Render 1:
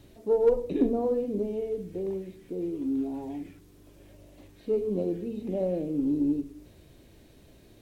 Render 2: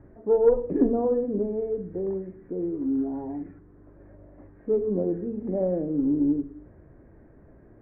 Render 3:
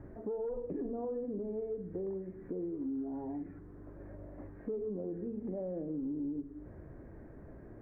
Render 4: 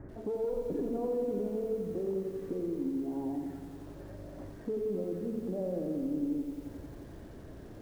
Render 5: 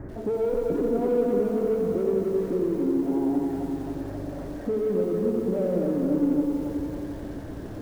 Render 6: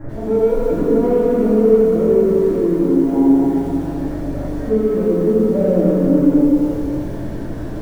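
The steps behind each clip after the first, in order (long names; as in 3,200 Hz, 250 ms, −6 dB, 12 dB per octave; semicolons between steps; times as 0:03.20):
Butterworth low-pass 1,800 Hz 48 dB per octave; level +3 dB
brickwall limiter −20.5 dBFS, peak gain reduction 11 dB; downward compressor 3 to 1, threshold −41 dBFS, peak gain reduction 13 dB; level +1.5 dB
feedback echo at a low word length 88 ms, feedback 80%, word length 10 bits, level −8 dB; level +2.5 dB
in parallel at −6 dB: soft clipping −38.5 dBFS, distortion −8 dB; on the sum: tape delay 271 ms, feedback 66%, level −3 dB, low-pass 2,100 Hz; level +6 dB
rectangular room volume 120 cubic metres, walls mixed, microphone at 2.4 metres; level −1 dB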